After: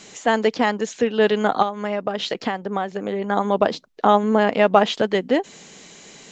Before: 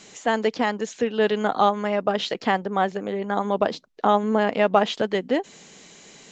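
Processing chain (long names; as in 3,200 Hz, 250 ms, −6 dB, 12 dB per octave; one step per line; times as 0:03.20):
0:01.62–0:03.24: downward compressor 10 to 1, threshold −23 dBFS, peak gain reduction 11 dB
level +3.5 dB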